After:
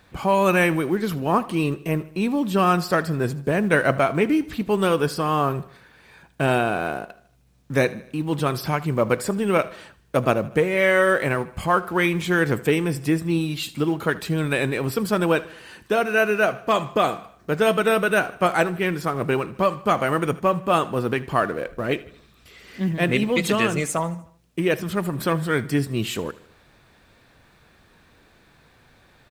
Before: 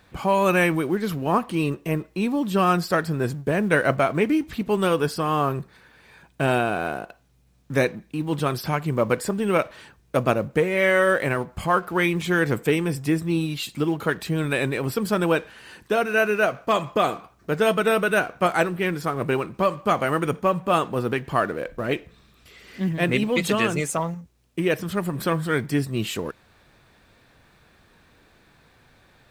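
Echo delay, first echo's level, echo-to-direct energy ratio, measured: 77 ms, -19.5 dB, -18.0 dB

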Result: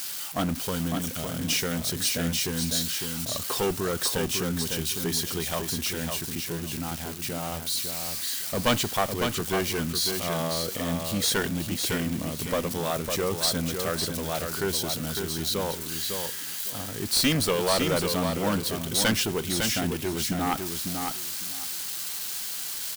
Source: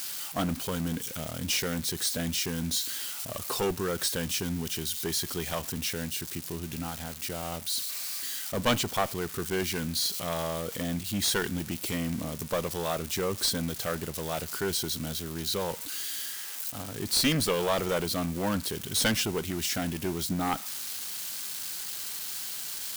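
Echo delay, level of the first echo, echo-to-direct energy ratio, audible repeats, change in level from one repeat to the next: 0.554 s, -5.5 dB, -5.5 dB, 2, -15.0 dB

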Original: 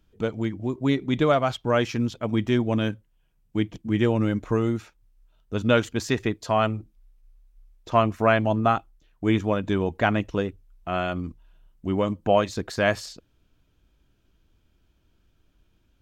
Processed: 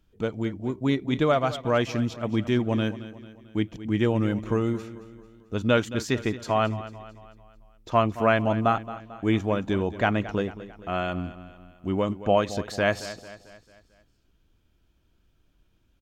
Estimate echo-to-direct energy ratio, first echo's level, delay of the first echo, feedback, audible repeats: -14.0 dB, -15.0 dB, 0.222 s, 49%, 4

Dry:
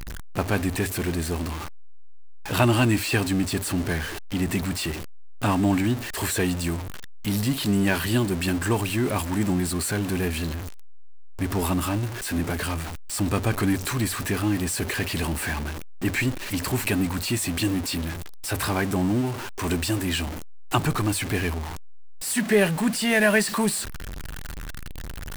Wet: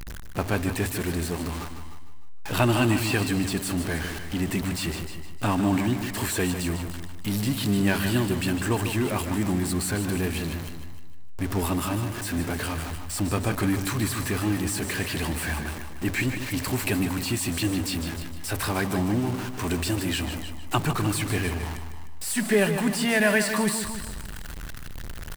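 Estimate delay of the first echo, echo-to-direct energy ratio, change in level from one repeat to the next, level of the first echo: 0.152 s, -7.0 dB, -6.0 dB, -9.0 dB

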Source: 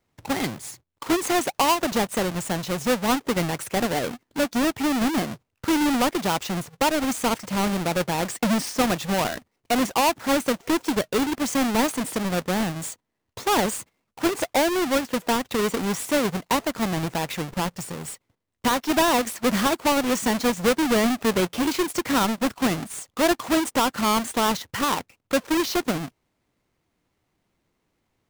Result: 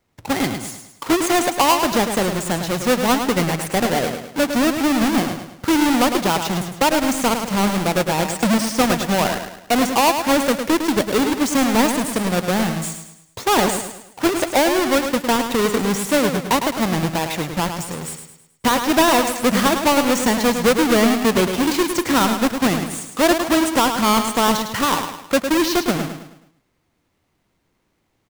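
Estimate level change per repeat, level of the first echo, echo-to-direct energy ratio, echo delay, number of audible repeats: -7.5 dB, -7.5 dB, -6.5 dB, 0.106 s, 4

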